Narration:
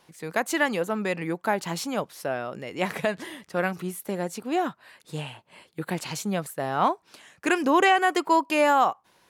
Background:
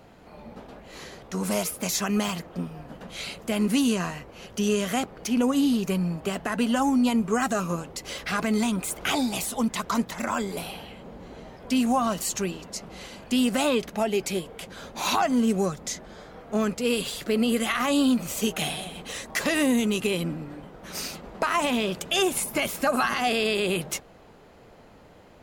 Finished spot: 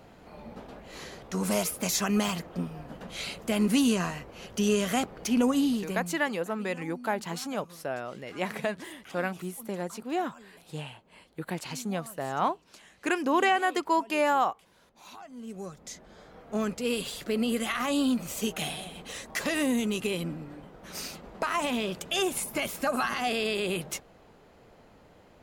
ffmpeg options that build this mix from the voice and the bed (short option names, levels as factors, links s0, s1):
-filter_complex "[0:a]adelay=5600,volume=0.596[s0];[1:a]volume=7.94,afade=t=out:st=5.44:d=0.79:silence=0.0749894,afade=t=in:st=15.33:d=1.27:silence=0.112202[s1];[s0][s1]amix=inputs=2:normalize=0"